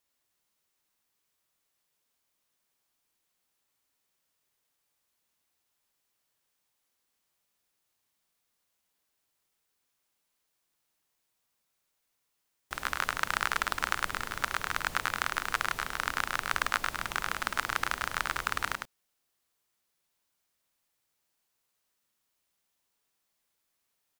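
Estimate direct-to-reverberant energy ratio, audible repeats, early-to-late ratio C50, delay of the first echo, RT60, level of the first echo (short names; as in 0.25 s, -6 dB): none, 1, none, 0.104 s, none, -4.5 dB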